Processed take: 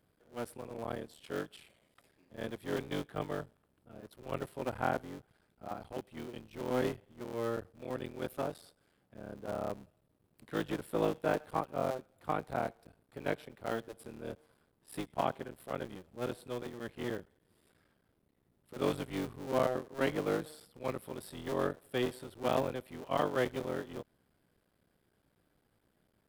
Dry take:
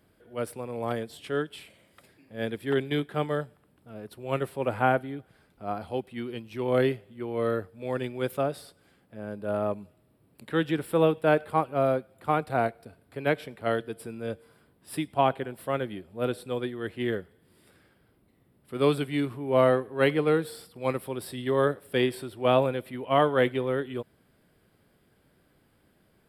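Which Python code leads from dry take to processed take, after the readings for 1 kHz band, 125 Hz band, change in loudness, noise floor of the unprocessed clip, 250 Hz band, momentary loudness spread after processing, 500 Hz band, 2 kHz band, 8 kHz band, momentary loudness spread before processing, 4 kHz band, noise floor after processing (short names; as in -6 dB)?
-8.5 dB, -10.0 dB, -9.0 dB, -66 dBFS, -8.5 dB, 14 LU, -9.5 dB, -9.5 dB, -5.0 dB, 15 LU, -8.5 dB, -75 dBFS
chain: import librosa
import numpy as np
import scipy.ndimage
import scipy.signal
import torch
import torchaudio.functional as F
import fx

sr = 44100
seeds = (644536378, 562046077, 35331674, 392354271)

y = fx.cycle_switch(x, sr, every=3, mode='muted')
y = fx.peak_eq(y, sr, hz=2300.0, db=-2.0, octaves=0.77)
y = y * 10.0 ** (-7.5 / 20.0)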